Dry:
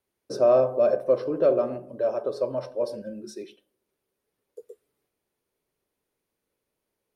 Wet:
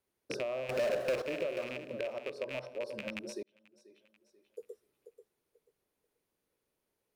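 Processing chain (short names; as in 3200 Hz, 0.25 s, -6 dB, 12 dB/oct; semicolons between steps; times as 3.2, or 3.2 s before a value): rattling part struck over -38 dBFS, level -18 dBFS; compressor 6:1, threshold -33 dBFS, peak gain reduction 17 dB; 0.69–1.22 power-law curve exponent 0.5; thinning echo 0.487 s, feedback 22%, high-pass 160 Hz, level -10 dB; 2.18–2.88 three-band expander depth 40%; 3.43–4.6 fade in; gain -2.5 dB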